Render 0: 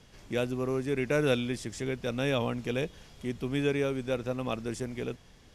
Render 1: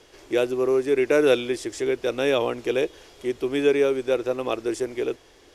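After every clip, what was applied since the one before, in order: resonant low shelf 260 Hz -9.5 dB, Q 3; gain +5.5 dB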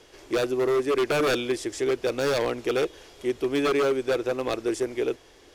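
wavefolder -17.5 dBFS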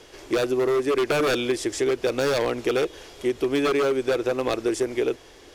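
compressor, threshold -24 dBFS, peak gain reduction 4.5 dB; gain +5 dB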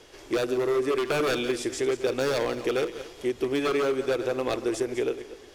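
regenerating reverse delay 0.116 s, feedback 46%, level -11.5 dB; gain -3.5 dB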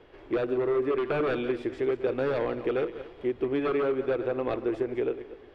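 air absorption 500 m

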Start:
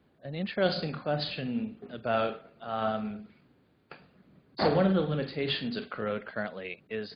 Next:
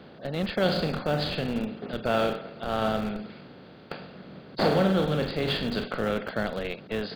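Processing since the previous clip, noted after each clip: per-bin compression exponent 0.6; in parallel at -9.5 dB: Schmitt trigger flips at -24.5 dBFS; on the sum: gain -1 dB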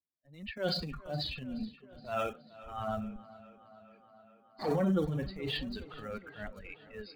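per-bin expansion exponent 3; transient shaper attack -11 dB, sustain +6 dB; tape echo 0.421 s, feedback 76%, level -17.5 dB, low-pass 4700 Hz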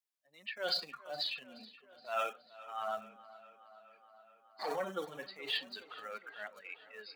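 HPF 730 Hz 12 dB/oct; gain +1.5 dB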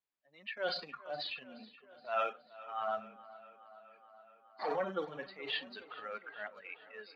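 air absorption 250 m; gain +3 dB

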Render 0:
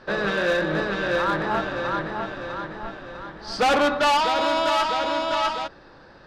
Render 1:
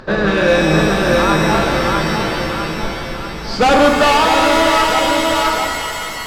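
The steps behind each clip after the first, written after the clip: low shelf 300 Hz +10 dB; upward compressor, threshold -42 dBFS; shimmer reverb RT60 2.5 s, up +7 st, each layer -2 dB, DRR 6 dB; gain +5.5 dB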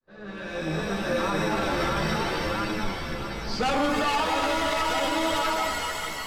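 opening faded in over 1.95 s; chorus voices 2, 0.74 Hz, delay 12 ms, depth 2.7 ms; limiter -11.5 dBFS, peak gain reduction 7 dB; gain -5 dB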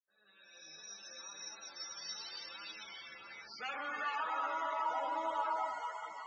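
ladder low-pass 7400 Hz, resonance 65%; loudest bins only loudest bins 64; band-pass sweep 5700 Hz -> 940 Hz, 1.87–4.91; gain +5.5 dB

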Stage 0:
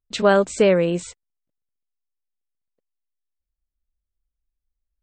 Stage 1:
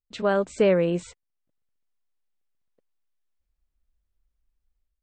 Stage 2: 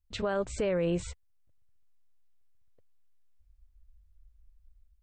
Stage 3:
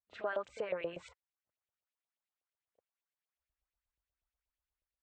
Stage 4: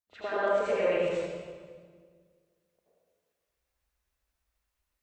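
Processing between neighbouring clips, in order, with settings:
high shelf 4400 Hz -9.5 dB; AGC gain up to 14 dB; gain -7.5 dB
resonant low shelf 130 Hz +14 dB, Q 1.5; limiter -22 dBFS, peak gain reduction 10.5 dB
LFO band-pass saw up 8.3 Hz 590–3200 Hz; pre-echo 33 ms -14.5 dB; gain +1 dB
reverb RT60 1.7 s, pre-delay 74 ms, DRR -10.5 dB

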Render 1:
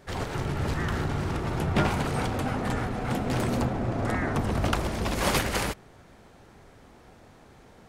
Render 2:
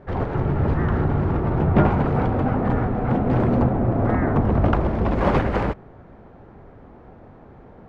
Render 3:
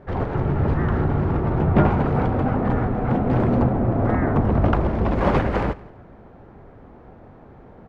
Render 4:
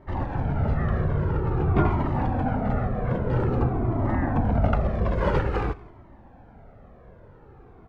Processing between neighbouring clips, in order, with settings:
Bessel low-pass 970 Hz, order 2; gain +8.5 dB
feedback echo 0.168 s, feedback 28%, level -21.5 dB
cascading flanger falling 0.5 Hz

